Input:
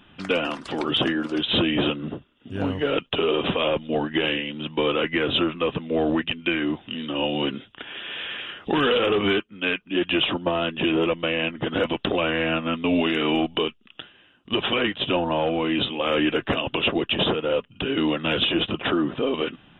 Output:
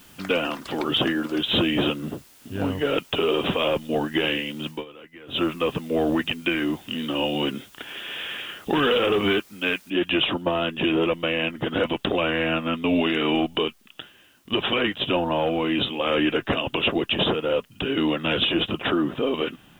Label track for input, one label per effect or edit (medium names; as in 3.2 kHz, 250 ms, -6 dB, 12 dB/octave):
4.680000	5.440000	dip -21.5 dB, fades 0.17 s
6.190000	7.700000	three bands compressed up and down depth 40%
9.900000	9.900000	noise floor step -53 dB -64 dB